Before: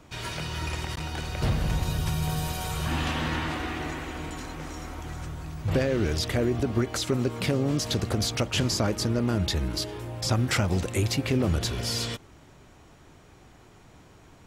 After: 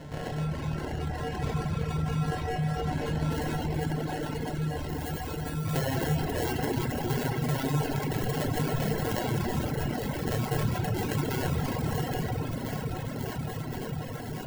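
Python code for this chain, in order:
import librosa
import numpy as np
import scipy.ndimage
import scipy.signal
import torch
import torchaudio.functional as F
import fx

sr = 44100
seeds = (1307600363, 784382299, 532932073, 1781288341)

y = scipy.signal.sosfilt(scipy.signal.butter(2, 67.0, 'highpass', fs=sr, output='sos'), x)
y = fx.comb_fb(y, sr, f0_hz=150.0, decay_s=0.23, harmonics='odd', damping=0.0, mix_pct=80)
y = fx.echo_alternate(y, sr, ms=268, hz=1500.0, feedback_pct=87, wet_db=-6.5)
y = fx.sample_hold(y, sr, seeds[0], rate_hz=1200.0, jitter_pct=0)
y = fx.high_shelf(y, sr, hz=9900.0, db=fx.steps((0.0, -11.5), (3.3, -2.0), (4.87, 7.0)))
y = fx.room_shoebox(y, sr, seeds[1], volume_m3=120.0, walls='hard', distance_m=0.48)
y = fx.dereverb_blind(y, sr, rt60_s=1.5)
y = fx.env_flatten(y, sr, amount_pct=50)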